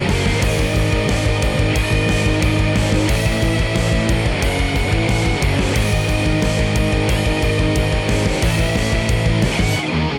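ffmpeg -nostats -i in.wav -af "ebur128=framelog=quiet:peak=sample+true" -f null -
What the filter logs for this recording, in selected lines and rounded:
Integrated loudness:
  I:         -17.3 LUFS
  Threshold: -27.3 LUFS
Loudness range:
  LRA:         0.4 LU
  Threshold: -37.2 LUFS
  LRA low:   -17.4 LUFS
  LRA high:  -17.0 LUFS
Sample peak:
  Peak:       -4.3 dBFS
True peak:
  Peak:       -4.3 dBFS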